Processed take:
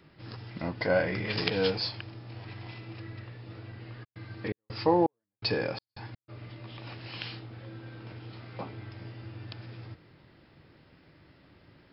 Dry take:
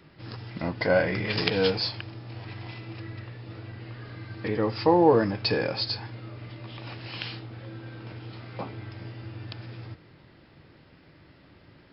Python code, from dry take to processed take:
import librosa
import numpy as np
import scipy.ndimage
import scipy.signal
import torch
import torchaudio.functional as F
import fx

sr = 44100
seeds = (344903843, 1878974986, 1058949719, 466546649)

y = fx.step_gate(x, sr, bpm=83, pattern='x.xx..xx.x.x', floor_db=-60.0, edge_ms=4.5, at=(4.03, 6.28), fade=0.02)
y = y * librosa.db_to_amplitude(-3.5)